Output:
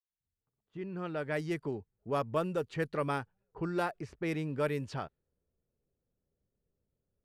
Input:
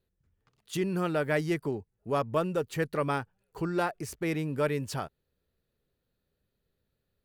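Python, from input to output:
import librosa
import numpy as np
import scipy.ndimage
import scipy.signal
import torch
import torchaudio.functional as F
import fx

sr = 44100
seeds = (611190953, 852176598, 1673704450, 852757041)

y = fx.fade_in_head(x, sr, length_s=1.87)
y = fx.env_lowpass(y, sr, base_hz=810.0, full_db=-25.0)
y = F.gain(torch.from_numpy(y), -3.5).numpy()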